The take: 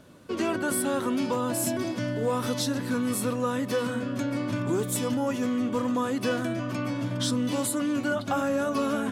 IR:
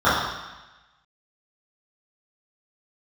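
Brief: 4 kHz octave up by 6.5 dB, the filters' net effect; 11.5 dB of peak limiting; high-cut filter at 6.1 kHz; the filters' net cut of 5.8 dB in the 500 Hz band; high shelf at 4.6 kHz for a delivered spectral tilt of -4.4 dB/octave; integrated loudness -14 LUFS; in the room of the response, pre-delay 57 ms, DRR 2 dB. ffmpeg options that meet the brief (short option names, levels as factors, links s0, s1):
-filter_complex "[0:a]lowpass=6100,equalizer=f=500:t=o:g=-7,equalizer=f=4000:t=o:g=5,highshelf=f=4600:g=8,alimiter=limit=0.0631:level=0:latency=1,asplit=2[s0][s1];[1:a]atrim=start_sample=2205,adelay=57[s2];[s1][s2]afir=irnorm=-1:irlink=0,volume=0.0473[s3];[s0][s3]amix=inputs=2:normalize=0,volume=7.08"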